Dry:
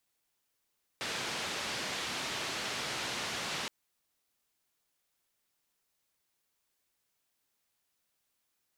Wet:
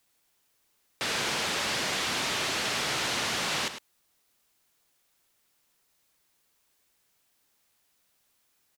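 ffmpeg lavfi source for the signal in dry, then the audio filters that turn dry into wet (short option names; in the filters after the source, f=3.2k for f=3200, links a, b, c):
-f lavfi -i "anoisesrc=c=white:d=2.67:r=44100:seed=1,highpass=f=100,lowpass=f=4400,volume=-25.4dB"
-filter_complex "[0:a]asplit=2[a][b];[b]aeval=exprs='0.0531*sin(PI/2*2*val(0)/0.0531)':c=same,volume=-6dB[c];[a][c]amix=inputs=2:normalize=0,aecho=1:1:104:0.299"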